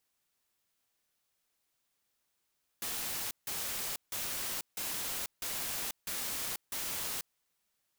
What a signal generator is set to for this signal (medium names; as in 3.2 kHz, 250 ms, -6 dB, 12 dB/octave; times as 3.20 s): noise bursts white, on 0.49 s, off 0.16 s, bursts 7, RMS -37 dBFS